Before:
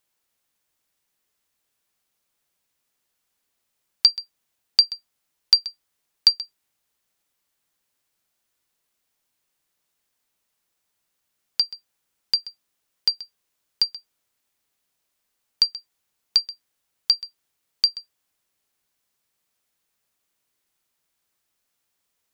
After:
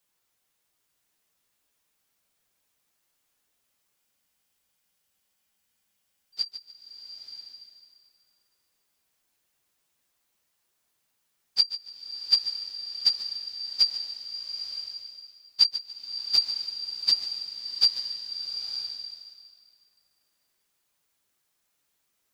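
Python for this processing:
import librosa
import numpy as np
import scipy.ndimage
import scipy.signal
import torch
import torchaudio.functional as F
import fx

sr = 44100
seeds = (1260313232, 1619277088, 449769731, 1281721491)

p1 = fx.phase_scramble(x, sr, seeds[0], window_ms=50)
p2 = p1 + fx.echo_feedback(p1, sr, ms=145, feedback_pct=32, wet_db=-15.0, dry=0)
p3 = fx.spec_freeze(p2, sr, seeds[1], at_s=3.98, hold_s=2.36)
y = fx.rev_bloom(p3, sr, seeds[2], attack_ms=950, drr_db=5.5)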